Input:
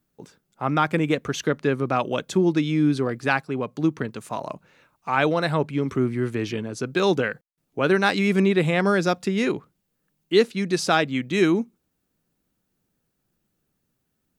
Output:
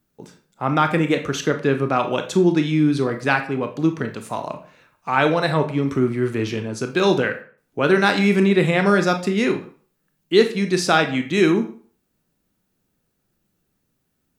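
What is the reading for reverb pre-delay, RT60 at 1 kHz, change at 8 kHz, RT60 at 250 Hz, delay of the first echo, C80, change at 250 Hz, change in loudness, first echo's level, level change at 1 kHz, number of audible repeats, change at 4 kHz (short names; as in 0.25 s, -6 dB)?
22 ms, 0.50 s, +3.0 dB, 0.40 s, none, 15.0 dB, +3.0 dB, +3.5 dB, none, +3.5 dB, none, +3.5 dB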